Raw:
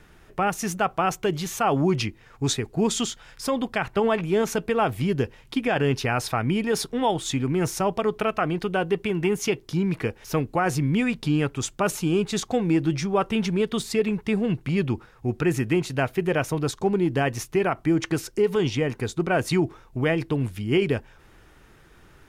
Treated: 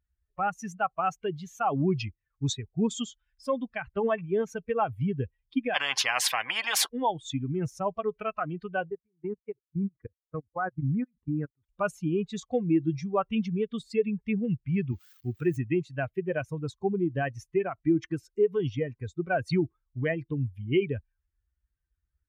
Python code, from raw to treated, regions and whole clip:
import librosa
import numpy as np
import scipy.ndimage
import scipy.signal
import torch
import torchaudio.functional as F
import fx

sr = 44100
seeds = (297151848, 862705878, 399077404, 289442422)

y = fx.chain(x, sr, fx.highpass_res(hz=770.0, q=7.0),
    fx.high_shelf(hz=5200.0, db=-6.0),
    fx.spectral_comp(ratio=4.0), at=(5.74, 6.89))
y = fx.chain(y, sr, fx.lowpass(hz=1900.0, slope=24),
    fx.level_steps(step_db=23), at=(8.9, 11.69))
y = fx.chain(y, sr, fx.crossing_spikes(level_db=-21.0),
    fx.highpass(hz=77.0, slope=12),
    fx.high_shelf(hz=6800.0, db=-8.0), at=(14.92, 15.57))
y = fx.bin_expand(y, sr, power=2.0)
y = scipy.signal.sosfilt(scipy.signal.butter(2, 59.0, 'highpass', fs=sr, output='sos'), y)
y = fx.high_shelf(y, sr, hz=8300.0, db=-8.5)